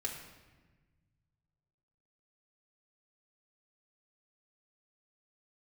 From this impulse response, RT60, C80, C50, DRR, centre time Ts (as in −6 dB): 1.3 s, 7.0 dB, 5.5 dB, −1.0 dB, 39 ms